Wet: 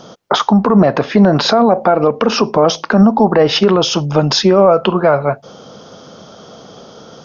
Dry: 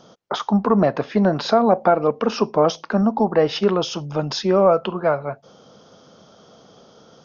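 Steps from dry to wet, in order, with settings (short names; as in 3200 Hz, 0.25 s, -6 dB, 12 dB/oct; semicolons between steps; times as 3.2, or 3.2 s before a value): maximiser +13 dB; gain -1 dB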